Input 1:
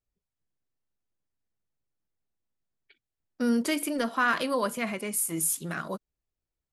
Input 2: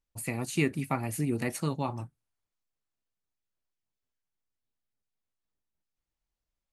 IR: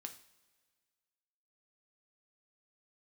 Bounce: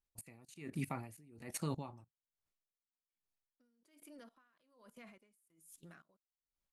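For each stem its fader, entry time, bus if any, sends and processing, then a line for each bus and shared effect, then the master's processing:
−16.0 dB, 0.20 s, no send, brickwall limiter −22 dBFS, peak gain reduction 8.5 dB
+2.5 dB, 0.00 s, no send, no processing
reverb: not used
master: output level in coarse steps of 18 dB; tremolo with a sine in dB 1.2 Hz, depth 25 dB

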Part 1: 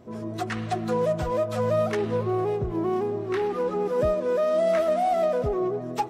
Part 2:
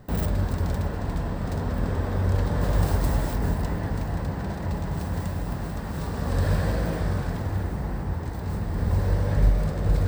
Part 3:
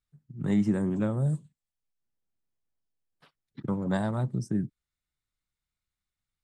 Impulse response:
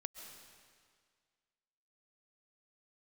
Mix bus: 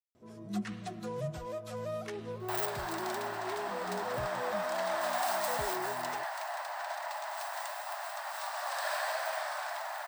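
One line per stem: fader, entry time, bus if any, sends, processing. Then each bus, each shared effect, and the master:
−15.0 dB, 0.15 s, no send, high-shelf EQ 2,600 Hz +9 dB
+1.5 dB, 2.40 s, no send, Butterworth high-pass 610 Hz 96 dB per octave
−11.5 dB, 0.00 s, no send, every bin expanded away from the loudest bin 2.5 to 1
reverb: not used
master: no processing

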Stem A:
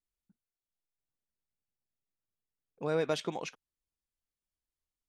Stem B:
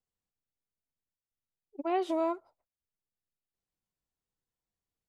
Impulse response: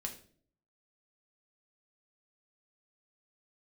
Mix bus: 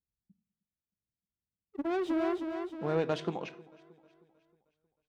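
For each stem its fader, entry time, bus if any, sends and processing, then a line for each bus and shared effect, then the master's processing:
−3.5 dB, 0.00 s, send −5.5 dB, echo send −21 dB, high-shelf EQ 6,600 Hz −9 dB; low-pass that shuts in the quiet parts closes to 320 Hz, open at −31 dBFS
−12.5 dB, 0.00 s, send −13.5 dB, echo send −5 dB, low-shelf EQ 380 Hz +11.5 dB; leveller curve on the samples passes 3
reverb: on, RT60 0.50 s, pre-delay 5 ms
echo: repeating echo 313 ms, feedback 50%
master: high-pass filter 46 Hz; bass and treble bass +6 dB, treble −4 dB; highs frequency-modulated by the lows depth 0.19 ms

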